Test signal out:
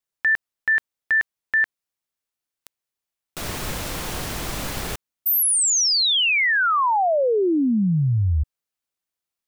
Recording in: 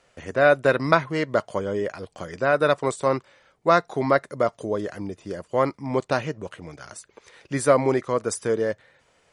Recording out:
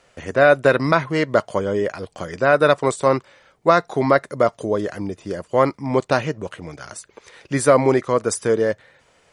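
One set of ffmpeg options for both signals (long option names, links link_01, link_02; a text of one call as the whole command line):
ffmpeg -i in.wav -af "alimiter=level_in=6dB:limit=-1dB:release=50:level=0:latency=1,volume=-1dB" out.wav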